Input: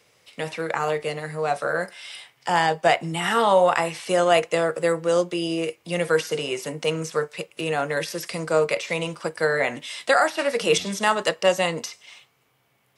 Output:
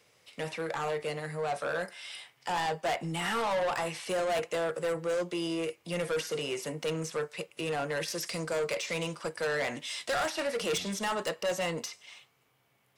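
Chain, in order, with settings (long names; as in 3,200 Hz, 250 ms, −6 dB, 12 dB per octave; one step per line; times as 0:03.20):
0:08.07–0:10.40: dynamic equaliser 5,900 Hz, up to +5 dB, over −43 dBFS, Q 0.98
soft clipping −22 dBFS, distortion −7 dB
level −4.5 dB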